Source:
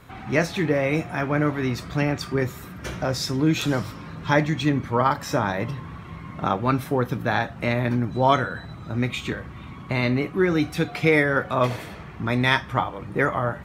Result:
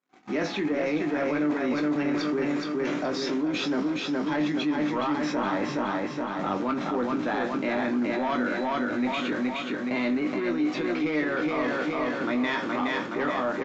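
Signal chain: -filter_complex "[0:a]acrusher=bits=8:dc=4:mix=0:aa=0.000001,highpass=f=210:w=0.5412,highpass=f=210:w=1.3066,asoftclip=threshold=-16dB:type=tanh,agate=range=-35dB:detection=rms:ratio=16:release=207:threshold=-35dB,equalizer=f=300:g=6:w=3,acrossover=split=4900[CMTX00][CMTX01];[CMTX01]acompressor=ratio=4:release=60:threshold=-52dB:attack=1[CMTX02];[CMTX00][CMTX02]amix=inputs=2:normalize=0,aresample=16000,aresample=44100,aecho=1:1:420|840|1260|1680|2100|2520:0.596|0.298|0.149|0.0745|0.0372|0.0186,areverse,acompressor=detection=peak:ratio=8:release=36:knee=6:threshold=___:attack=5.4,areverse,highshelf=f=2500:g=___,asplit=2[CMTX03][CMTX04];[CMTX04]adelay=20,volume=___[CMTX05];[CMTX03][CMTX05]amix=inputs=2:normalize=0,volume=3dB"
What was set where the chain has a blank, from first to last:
-29dB, -2.5, -7dB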